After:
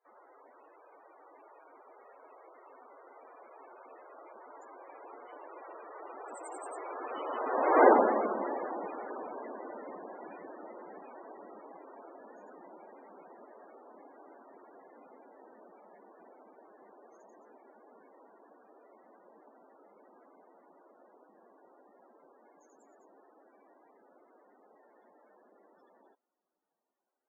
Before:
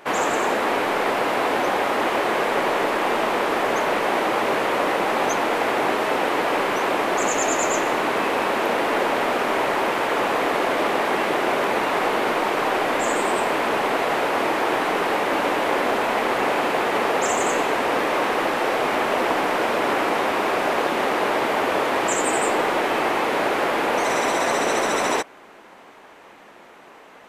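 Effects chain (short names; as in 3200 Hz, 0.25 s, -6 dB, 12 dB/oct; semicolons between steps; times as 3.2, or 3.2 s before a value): Doppler pass-by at 7.86, 44 m/s, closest 4.1 m; loudest bins only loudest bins 32; gain +4 dB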